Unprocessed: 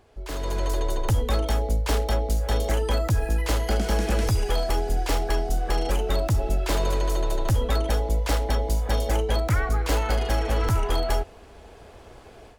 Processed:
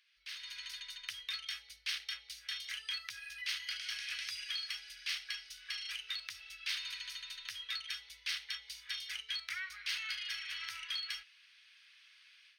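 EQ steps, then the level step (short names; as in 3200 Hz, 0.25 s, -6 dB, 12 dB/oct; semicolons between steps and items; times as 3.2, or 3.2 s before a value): polynomial smoothing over 15 samples; inverse Chebyshev high-pass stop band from 790 Hz, stop band 50 dB; -1.0 dB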